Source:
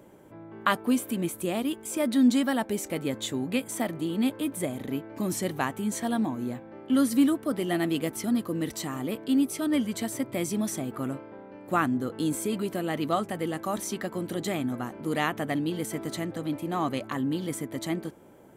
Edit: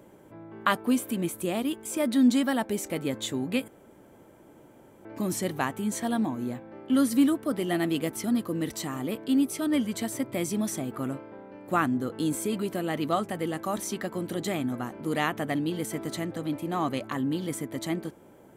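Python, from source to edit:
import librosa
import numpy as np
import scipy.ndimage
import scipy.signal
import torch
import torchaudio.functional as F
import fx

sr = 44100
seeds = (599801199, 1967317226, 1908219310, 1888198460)

y = fx.edit(x, sr, fx.room_tone_fill(start_s=3.68, length_s=1.37), tone=tone)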